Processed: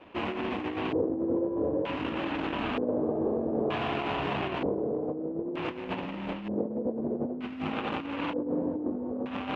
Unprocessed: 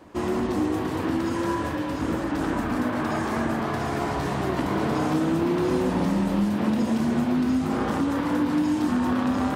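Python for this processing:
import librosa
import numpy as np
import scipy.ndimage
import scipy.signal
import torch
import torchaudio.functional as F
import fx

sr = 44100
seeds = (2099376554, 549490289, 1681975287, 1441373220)

y = scipy.signal.medfilt(x, 25)
y = fx.low_shelf(y, sr, hz=250.0, db=-9.5)
y = fx.hum_notches(y, sr, base_hz=60, count=6)
y = fx.over_compress(y, sr, threshold_db=-31.0, ratio=-0.5)
y = fx.filter_lfo_lowpass(y, sr, shape='square', hz=0.54, low_hz=480.0, high_hz=2700.0, q=3.9)
y = y * librosa.db_to_amplitude(-2.0)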